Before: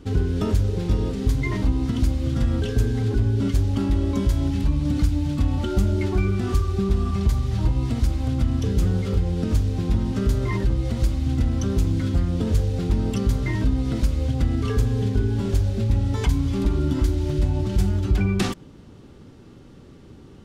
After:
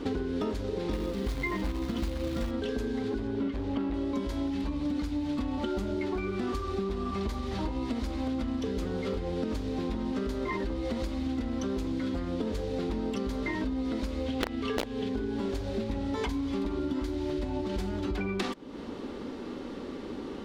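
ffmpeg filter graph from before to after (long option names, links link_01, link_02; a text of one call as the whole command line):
ffmpeg -i in.wav -filter_complex "[0:a]asettb=1/sr,asplit=3[link_01][link_02][link_03];[link_01]atrim=end=0.934[link_04];[link_02]atrim=start=0.93:end=2.51,asetpts=PTS-STARTPTS,afade=type=in:duration=0.004:curve=qsin,afade=type=out:start_time=1.576:duration=0.004:curve=qsin,equalizer=frequency=76:width_type=o:width=1.3:gain=11,aecho=1:1:5.8:0.6,atrim=end_sample=69678,acrusher=bits=6:mode=log:mix=0:aa=0.000001[link_05];[link_03]atrim=start=2.506[link_06];[link_04][link_05]acrossfade=duration=0.004:curve1=hsin:curve2=qsin[link_07];[link_07][link_06]acrossfade=duration=0.004:curve1=qsin:curve2=hsin,asettb=1/sr,asplit=3[link_08][link_09][link_10];[link_08]atrim=end=3.274[link_11];[link_09]atrim=start=3.27:end=3.94,asetpts=PTS-STARTPTS,afade=type=in:duration=0.004:curve=qsin,afade=type=out:start_time=0.666:duration=0.004:curve=qsin,acrossover=split=3400[link_12][link_13];[link_13]acompressor=threshold=-58dB:ratio=4:attack=1:release=60[link_14];[link_12][link_14]amix=inputs=2:normalize=0,asoftclip=type=hard:threshold=-15dB[link_15];[link_10]atrim=start=3.936[link_16];[link_11][link_15]acrossfade=duration=0.004:curve1=hsin:curve2=qsin[link_17];[link_17][link_16]acrossfade=duration=0.004:curve1=qsin:curve2=hsin,asettb=1/sr,asplit=3[link_18][link_19][link_20];[link_18]atrim=end=14.264[link_21];[link_19]atrim=start=14.26:end=15.09,asetpts=PTS-STARTPTS,afade=type=in:duration=0.004:curve=qsin,afade=type=out:start_time=0.826:duration=0.004:curve=qsin,equalizer=frequency=2900:width=1.5:gain=6.5,aeval=exprs='(mod(3.98*val(0)+1,2)-1)/3.98':channel_layout=same[link_22];[link_20]atrim=start=15.086[link_23];[link_21][link_22]acrossfade=duration=0.004:curve1=hsin:curve2=qsin[link_24];[link_24][link_23]acrossfade=duration=0.004:curve1=qsin:curve2=hsin,equalizer=frequency=125:width_type=o:width=1:gain=-12,equalizer=frequency=250:width_type=o:width=1:gain=11,equalizer=frequency=500:width_type=o:width=1:gain=9,equalizer=frequency=1000:width_type=o:width=1:gain=9,equalizer=frequency=2000:width_type=o:width=1:gain=7,equalizer=frequency=4000:width_type=o:width=1:gain=8,acompressor=threshold=-30dB:ratio=6" out.wav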